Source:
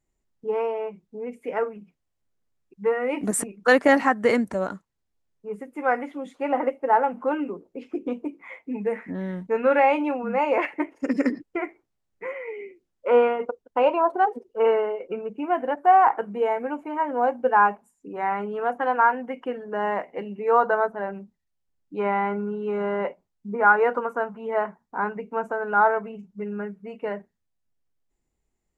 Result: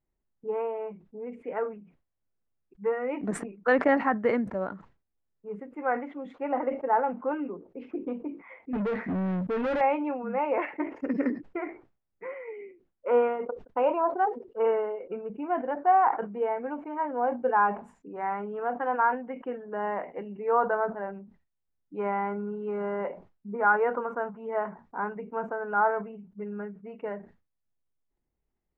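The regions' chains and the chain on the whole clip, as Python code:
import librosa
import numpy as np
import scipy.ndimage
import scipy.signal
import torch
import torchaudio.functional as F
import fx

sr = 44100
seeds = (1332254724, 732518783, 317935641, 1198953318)

y = fx.chain(x, sr, fx.low_shelf(hz=270.0, db=8.0),
    fx.clip_hard(threshold_db=-21.0),
    fx.leveller(passes=3), at=(8.73, 9.81))
y = scipy.signal.sosfilt(scipy.signal.butter(2, 2000.0, 'lowpass', fs=sr, output='sos'), y)
y = fx.sustainer(y, sr, db_per_s=140.0)
y = y * 10.0 ** (-5.0 / 20.0)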